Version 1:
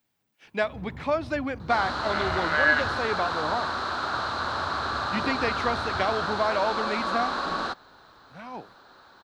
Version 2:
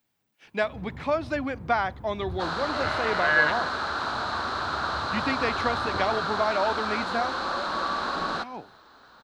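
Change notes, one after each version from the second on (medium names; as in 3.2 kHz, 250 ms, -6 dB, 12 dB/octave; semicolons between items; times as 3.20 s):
second sound: entry +0.70 s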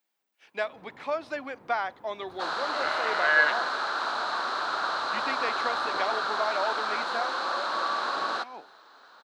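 speech -3.5 dB; master: add high-pass 420 Hz 12 dB/octave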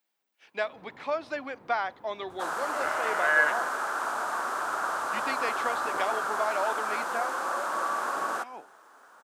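second sound: remove resonant low-pass 4.1 kHz, resonance Q 8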